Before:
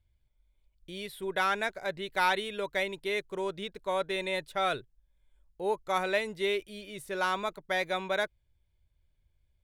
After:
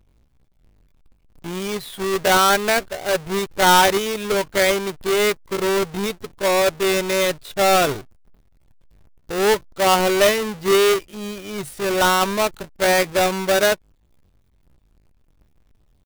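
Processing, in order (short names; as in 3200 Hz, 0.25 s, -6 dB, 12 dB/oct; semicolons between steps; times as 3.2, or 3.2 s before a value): half-waves squared off; tempo 0.6×; gain +8.5 dB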